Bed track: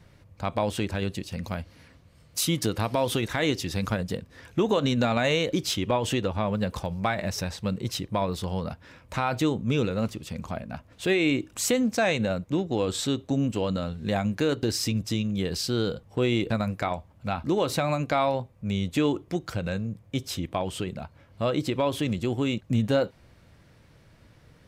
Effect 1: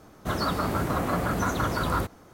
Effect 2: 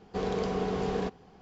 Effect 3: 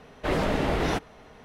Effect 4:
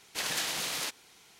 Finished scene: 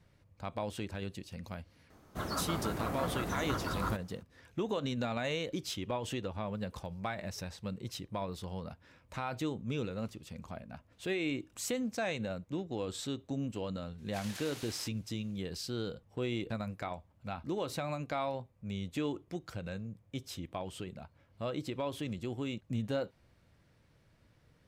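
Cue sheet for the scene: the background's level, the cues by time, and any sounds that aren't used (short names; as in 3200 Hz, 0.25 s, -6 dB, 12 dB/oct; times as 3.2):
bed track -11 dB
1.9 add 1 -9.5 dB
13.98 add 4 -14.5 dB
not used: 2, 3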